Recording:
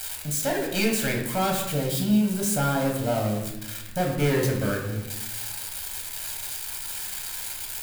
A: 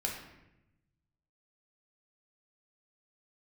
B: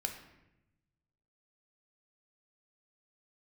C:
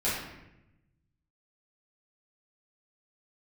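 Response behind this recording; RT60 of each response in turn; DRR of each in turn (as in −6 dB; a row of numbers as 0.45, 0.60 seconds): A; 0.90, 0.90, 0.90 seconds; −1.0, 4.0, −10.5 decibels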